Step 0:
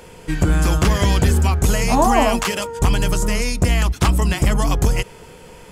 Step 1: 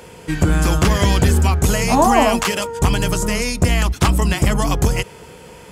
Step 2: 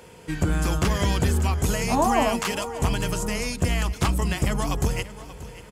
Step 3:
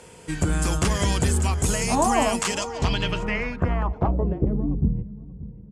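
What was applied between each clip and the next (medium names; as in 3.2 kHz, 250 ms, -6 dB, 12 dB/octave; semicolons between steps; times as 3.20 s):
high-pass 54 Hz; trim +2 dB
feedback delay 583 ms, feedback 34%, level -16 dB; trim -7.5 dB
low-pass sweep 9 kHz -> 200 Hz, 2.40–4.88 s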